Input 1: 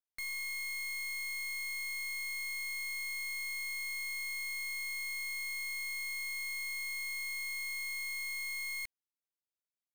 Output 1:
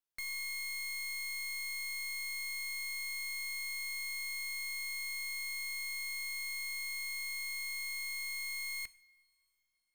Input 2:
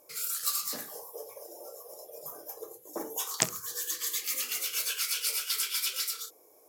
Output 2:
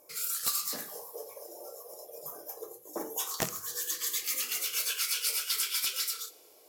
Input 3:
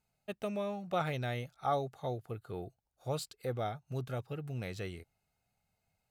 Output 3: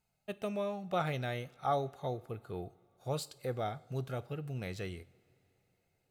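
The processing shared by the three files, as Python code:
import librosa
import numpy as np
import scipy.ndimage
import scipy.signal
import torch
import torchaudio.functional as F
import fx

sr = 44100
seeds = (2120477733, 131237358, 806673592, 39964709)

y = (np.mod(10.0 ** (16.0 / 20.0) * x + 1.0, 2.0) - 1.0) / 10.0 ** (16.0 / 20.0)
y = fx.rev_double_slope(y, sr, seeds[0], early_s=0.56, late_s=4.1, knee_db=-19, drr_db=15.5)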